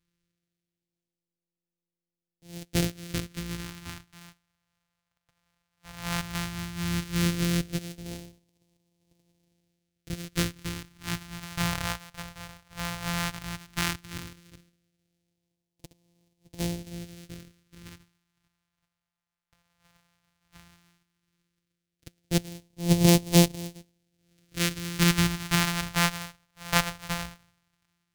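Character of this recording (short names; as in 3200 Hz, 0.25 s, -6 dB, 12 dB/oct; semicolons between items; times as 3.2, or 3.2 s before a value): a buzz of ramps at a fixed pitch in blocks of 256 samples; phasing stages 2, 0.14 Hz, lowest notch 330–1300 Hz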